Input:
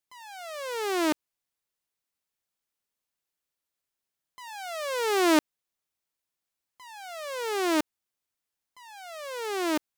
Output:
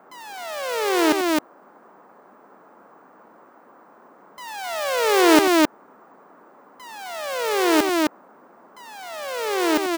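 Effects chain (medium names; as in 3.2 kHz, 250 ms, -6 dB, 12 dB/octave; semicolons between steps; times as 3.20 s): loudspeakers at several distances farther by 30 m -12 dB, 90 m -2 dB; band noise 200–1300 Hz -57 dBFS; careless resampling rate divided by 2×, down none, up hold; trim +6.5 dB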